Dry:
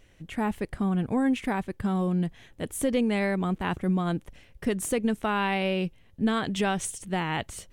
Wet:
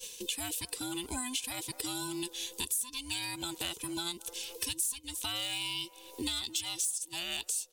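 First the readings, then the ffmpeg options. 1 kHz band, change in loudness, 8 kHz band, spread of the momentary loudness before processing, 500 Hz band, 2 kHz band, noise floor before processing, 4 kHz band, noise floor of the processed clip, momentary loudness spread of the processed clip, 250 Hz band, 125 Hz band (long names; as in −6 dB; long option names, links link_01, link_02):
−14.0 dB, −6.5 dB, +5.5 dB, 7 LU, −17.0 dB, −8.5 dB, −57 dBFS, +5.5 dB, −55 dBFS, 5 LU, −16.0 dB, −19.0 dB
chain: -filter_complex "[0:a]afftfilt=real='real(if(between(b,1,1008),(2*floor((b-1)/24)+1)*24-b,b),0)':imag='imag(if(between(b,1,1008),(2*floor((b-1)/24)+1)*24-b,b),0)*if(between(b,1,1008),-1,1)':win_size=2048:overlap=0.75,acrossover=split=420|2200[link_01][link_02][link_03];[link_01]alimiter=level_in=3dB:limit=-24dB:level=0:latency=1:release=129,volume=-3dB[link_04];[link_02]asplit=2[link_05][link_06];[link_06]adelay=217,lowpass=frequency=960:poles=1,volume=-15.5dB,asplit=2[link_07][link_08];[link_08]adelay=217,lowpass=frequency=960:poles=1,volume=0.53,asplit=2[link_09][link_10];[link_10]adelay=217,lowpass=frequency=960:poles=1,volume=0.53,asplit=2[link_11][link_12];[link_12]adelay=217,lowpass=frequency=960:poles=1,volume=0.53,asplit=2[link_13][link_14];[link_14]adelay=217,lowpass=frequency=960:poles=1,volume=0.53[link_15];[link_05][link_07][link_09][link_11][link_13][link_15]amix=inputs=6:normalize=0[link_16];[link_03]volume=31.5dB,asoftclip=hard,volume=-31.5dB[link_17];[link_04][link_16][link_17]amix=inputs=3:normalize=0,agate=range=-33dB:threshold=-52dB:ratio=3:detection=peak,aexciter=amount=10.6:drive=4.9:freq=2800,highshelf=frequency=2000:gain=10,acompressor=threshold=-35dB:ratio=6,equalizer=frequency=69:width=2.1:gain=9"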